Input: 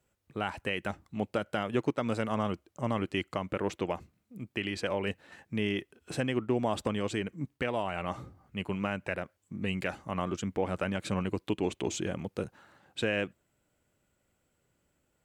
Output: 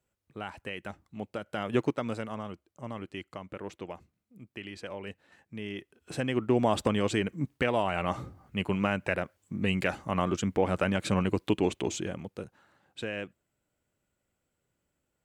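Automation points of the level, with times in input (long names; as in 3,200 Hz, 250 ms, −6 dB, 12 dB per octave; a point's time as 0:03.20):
0:01.45 −5.5 dB
0:01.76 +3 dB
0:02.44 −8 dB
0:05.62 −8 dB
0:06.58 +4.5 dB
0:11.59 +4.5 dB
0:12.44 −5.5 dB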